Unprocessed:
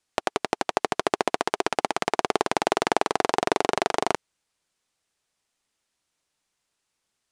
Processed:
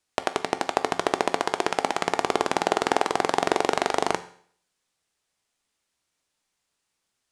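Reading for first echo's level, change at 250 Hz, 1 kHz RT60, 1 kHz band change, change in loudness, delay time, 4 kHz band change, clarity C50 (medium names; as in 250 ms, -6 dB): no echo, +0.5 dB, 0.55 s, +0.5 dB, +0.5 dB, no echo, +0.5 dB, 15.0 dB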